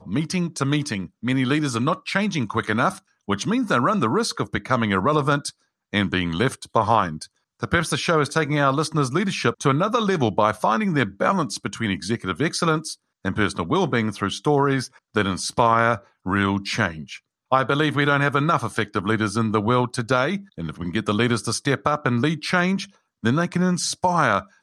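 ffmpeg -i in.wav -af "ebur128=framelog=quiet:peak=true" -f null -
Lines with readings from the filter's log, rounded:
Integrated loudness:
  I:         -22.1 LUFS
  Threshold: -32.3 LUFS
Loudness range:
  LRA:         2.2 LU
  Threshold: -42.3 LUFS
  LRA low:   -23.4 LUFS
  LRA high:  -21.2 LUFS
True peak:
  Peak:       -4.5 dBFS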